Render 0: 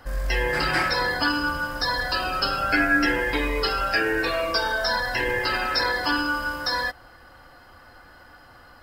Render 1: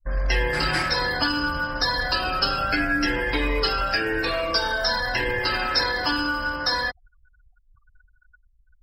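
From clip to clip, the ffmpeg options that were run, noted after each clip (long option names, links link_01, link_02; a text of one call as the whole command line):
ffmpeg -i in.wav -filter_complex "[0:a]anlmdn=0.398,afftfilt=real='re*gte(hypot(re,im),0.00501)':imag='im*gte(hypot(re,im),0.00501)':win_size=1024:overlap=0.75,acrossover=split=230|3000[link_01][link_02][link_03];[link_02]acompressor=threshold=-26dB:ratio=6[link_04];[link_01][link_04][link_03]amix=inputs=3:normalize=0,volume=3dB" out.wav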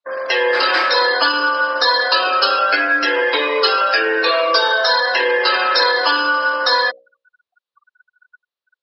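ffmpeg -i in.wav -af "acontrast=54,highpass=frequency=400:width=0.5412,highpass=frequency=400:width=1.3066,equalizer=frequency=520:width_type=q:width=4:gain=5,equalizer=frequency=760:width_type=q:width=4:gain=-4,equalizer=frequency=1100:width_type=q:width=4:gain=4,equalizer=frequency=2100:width_type=q:width=4:gain=-4,equalizer=frequency=3900:width_type=q:width=4:gain=5,lowpass=frequency=4500:width=0.5412,lowpass=frequency=4500:width=1.3066,bandreject=frequency=60:width_type=h:width=6,bandreject=frequency=120:width_type=h:width=6,bandreject=frequency=180:width_type=h:width=6,bandreject=frequency=240:width_type=h:width=6,bandreject=frequency=300:width_type=h:width=6,bandreject=frequency=360:width_type=h:width=6,bandreject=frequency=420:width_type=h:width=6,bandreject=frequency=480:width_type=h:width=6,bandreject=frequency=540:width_type=h:width=6,bandreject=frequency=600:width_type=h:width=6,volume=3dB" out.wav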